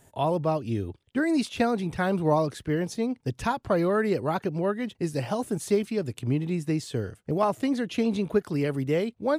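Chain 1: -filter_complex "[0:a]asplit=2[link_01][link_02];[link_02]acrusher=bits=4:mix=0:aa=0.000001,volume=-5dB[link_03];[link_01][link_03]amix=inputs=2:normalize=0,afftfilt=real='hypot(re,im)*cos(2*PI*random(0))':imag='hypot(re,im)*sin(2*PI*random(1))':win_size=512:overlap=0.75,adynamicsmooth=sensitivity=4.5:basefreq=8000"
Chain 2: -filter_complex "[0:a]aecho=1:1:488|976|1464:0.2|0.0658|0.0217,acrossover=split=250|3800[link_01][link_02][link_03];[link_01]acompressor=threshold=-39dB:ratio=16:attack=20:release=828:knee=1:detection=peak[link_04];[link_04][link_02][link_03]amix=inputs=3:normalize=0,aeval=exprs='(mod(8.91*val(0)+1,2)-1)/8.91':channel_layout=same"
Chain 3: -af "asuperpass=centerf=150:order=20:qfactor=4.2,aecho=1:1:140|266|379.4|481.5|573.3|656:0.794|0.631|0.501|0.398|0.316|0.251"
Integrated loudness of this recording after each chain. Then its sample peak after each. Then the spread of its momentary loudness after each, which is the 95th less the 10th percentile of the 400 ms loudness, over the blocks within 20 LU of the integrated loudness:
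−30.0, −29.0, −34.0 LKFS; −12.5, −19.0, −17.5 dBFS; 6, 7, 14 LU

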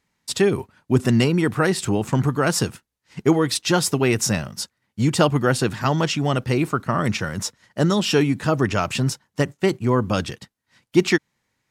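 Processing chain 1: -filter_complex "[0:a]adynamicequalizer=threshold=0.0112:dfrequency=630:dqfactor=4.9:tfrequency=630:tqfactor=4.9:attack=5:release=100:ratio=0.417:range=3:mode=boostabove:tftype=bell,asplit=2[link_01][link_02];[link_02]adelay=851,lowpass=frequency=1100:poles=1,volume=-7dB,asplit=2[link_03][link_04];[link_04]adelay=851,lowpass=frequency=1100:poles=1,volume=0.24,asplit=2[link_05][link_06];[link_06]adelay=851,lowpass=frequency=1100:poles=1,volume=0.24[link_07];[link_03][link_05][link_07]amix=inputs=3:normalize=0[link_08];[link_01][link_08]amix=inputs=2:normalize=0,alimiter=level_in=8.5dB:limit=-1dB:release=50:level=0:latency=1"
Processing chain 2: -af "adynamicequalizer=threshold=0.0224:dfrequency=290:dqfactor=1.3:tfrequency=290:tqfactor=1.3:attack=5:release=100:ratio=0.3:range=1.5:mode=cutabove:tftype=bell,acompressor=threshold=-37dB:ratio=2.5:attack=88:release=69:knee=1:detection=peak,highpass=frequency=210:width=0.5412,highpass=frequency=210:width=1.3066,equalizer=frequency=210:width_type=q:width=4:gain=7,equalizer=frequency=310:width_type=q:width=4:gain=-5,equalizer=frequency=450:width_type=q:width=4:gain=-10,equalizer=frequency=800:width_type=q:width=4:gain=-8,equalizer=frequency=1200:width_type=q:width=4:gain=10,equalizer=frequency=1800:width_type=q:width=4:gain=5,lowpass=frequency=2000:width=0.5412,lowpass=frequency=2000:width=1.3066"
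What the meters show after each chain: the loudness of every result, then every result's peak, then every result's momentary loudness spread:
−13.5, −32.0 LKFS; −1.0, −9.0 dBFS; 7, 11 LU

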